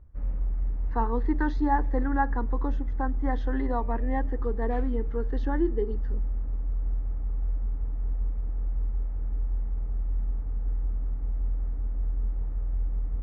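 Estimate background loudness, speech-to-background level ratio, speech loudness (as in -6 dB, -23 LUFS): -32.5 LUFS, 1.5 dB, -31.0 LUFS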